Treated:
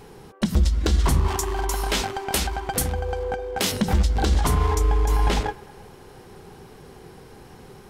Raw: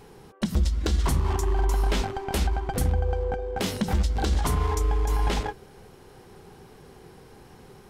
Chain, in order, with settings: 1.28–3.72 s: tilt EQ +2 dB/octave; feedback echo behind a band-pass 105 ms, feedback 76%, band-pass 1.2 kHz, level -23 dB; trim +4 dB

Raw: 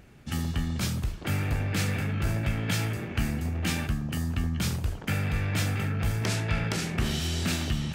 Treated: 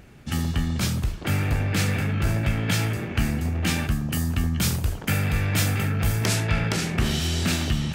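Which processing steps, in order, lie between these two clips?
3.91–6.47 s: treble shelf 8.1 kHz +9 dB; trim +4.5 dB

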